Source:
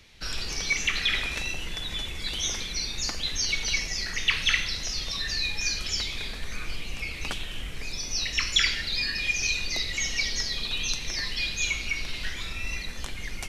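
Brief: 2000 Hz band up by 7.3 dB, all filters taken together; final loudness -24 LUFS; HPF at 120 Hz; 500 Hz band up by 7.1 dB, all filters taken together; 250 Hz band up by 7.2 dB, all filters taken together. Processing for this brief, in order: HPF 120 Hz; bell 250 Hz +8 dB; bell 500 Hz +6 dB; bell 2000 Hz +8.5 dB; gain -0.5 dB

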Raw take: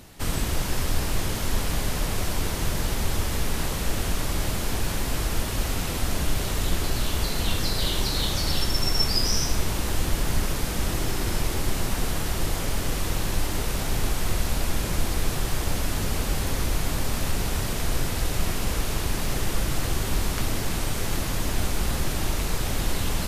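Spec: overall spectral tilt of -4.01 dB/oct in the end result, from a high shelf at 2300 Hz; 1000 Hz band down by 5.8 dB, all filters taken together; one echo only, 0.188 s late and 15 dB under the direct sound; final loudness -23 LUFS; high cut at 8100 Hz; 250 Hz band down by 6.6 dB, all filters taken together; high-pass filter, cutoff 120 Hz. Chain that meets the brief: HPF 120 Hz; LPF 8100 Hz; bell 250 Hz -8.5 dB; bell 1000 Hz -5.5 dB; high shelf 2300 Hz -8 dB; echo 0.188 s -15 dB; gain +12 dB

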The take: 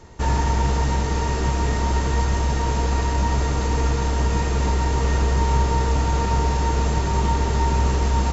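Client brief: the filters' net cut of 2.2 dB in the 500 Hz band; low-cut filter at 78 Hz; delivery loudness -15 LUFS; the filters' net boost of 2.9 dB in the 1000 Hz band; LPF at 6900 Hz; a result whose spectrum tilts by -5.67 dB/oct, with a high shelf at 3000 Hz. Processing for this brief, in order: HPF 78 Hz; LPF 6900 Hz; bell 500 Hz -3.5 dB; bell 1000 Hz +4.5 dB; high shelf 3000 Hz -5 dB; gain +8.5 dB

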